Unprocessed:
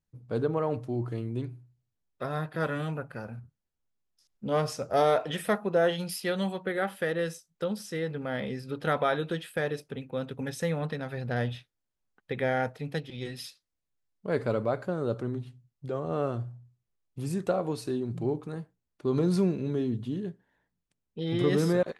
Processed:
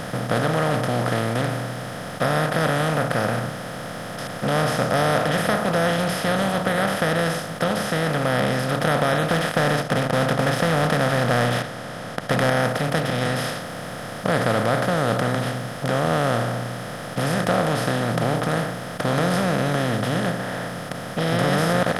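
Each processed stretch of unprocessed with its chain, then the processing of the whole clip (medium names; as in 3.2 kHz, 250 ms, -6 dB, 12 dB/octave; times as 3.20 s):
9.30–12.50 s: low-pass 5.1 kHz + waveshaping leveller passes 2
whole clip: spectral levelling over time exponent 0.2; peaking EQ 380 Hz -10.5 dB 0.46 oct; trim -1 dB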